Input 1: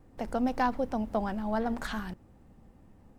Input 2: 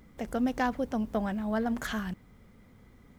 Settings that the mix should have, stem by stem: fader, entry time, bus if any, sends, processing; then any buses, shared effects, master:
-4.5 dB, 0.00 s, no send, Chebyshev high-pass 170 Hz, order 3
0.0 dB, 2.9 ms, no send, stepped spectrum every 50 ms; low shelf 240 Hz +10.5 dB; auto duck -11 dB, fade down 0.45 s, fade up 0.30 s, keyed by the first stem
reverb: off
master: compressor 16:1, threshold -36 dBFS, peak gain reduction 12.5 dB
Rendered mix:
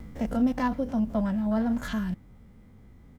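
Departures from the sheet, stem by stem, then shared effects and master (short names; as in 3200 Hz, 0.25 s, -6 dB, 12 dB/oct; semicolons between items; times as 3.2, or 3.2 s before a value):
stem 2 0.0 dB -> +8.5 dB; master: missing compressor 16:1, threshold -36 dBFS, peak gain reduction 12.5 dB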